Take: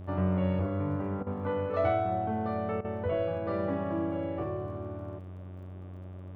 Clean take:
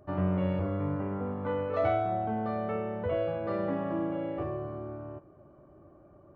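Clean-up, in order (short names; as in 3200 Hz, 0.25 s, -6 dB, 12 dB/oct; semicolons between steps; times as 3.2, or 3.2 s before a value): de-click; de-hum 92 Hz, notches 40; interpolate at 1.23/2.81, 35 ms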